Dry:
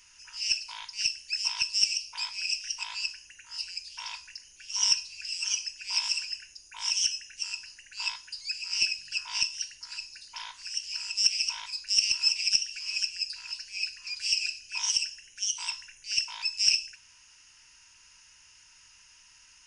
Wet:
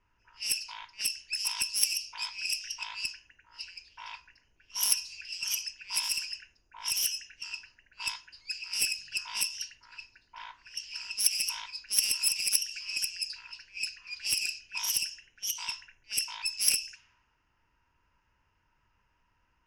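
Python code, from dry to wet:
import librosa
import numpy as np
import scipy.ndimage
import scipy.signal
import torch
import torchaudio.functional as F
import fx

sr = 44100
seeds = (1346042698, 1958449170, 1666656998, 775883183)

y = fx.self_delay(x, sr, depth_ms=0.11)
y = fx.env_lowpass(y, sr, base_hz=760.0, full_db=-27.5)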